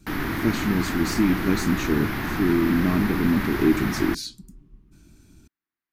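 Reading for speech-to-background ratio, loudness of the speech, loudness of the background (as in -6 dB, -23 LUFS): 3.5 dB, -24.5 LUFS, -28.0 LUFS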